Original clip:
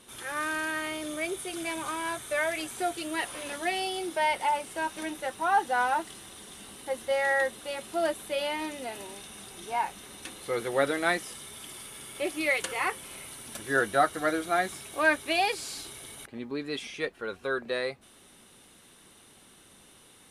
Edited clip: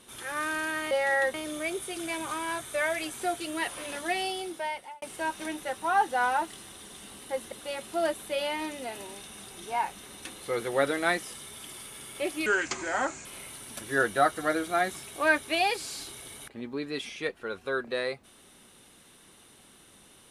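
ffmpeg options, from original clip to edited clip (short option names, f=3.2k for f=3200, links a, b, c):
-filter_complex "[0:a]asplit=7[a][b][c][d][e][f][g];[a]atrim=end=0.912[h];[b]atrim=start=7.088:end=7.522[i];[c]atrim=start=0.908:end=4.59,asetpts=PTS-STARTPTS,afade=t=out:st=2.912:d=0.77[j];[d]atrim=start=4.59:end=7.092,asetpts=PTS-STARTPTS,afade=t=in:d=0.004:c=hsin[k];[e]atrim=start=7.518:end=12.464[l];[f]atrim=start=12.46:end=13.03,asetpts=PTS-STARTPTS,asetrate=31752,aresample=44100,atrim=end_sample=34912,asetpts=PTS-STARTPTS[m];[g]atrim=start=13.026[n];[h][i]acrossfade=d=0.004:c1=hsin:c2=hsin[o];[j][k]concat=n=2:v=0:a=1[p];[o][p]acrossfade=d=0.004:c1=hsin:c2=hsin[q];[q][l]acrossfade=d=0.004:c1=hsin:c2=hsin[r];[r][m]acrossfade=d=0.004:c1=hsin:c2=hsin[s];[s][n]acrossfade=d=0.004:c1=hsin:c2=hsin"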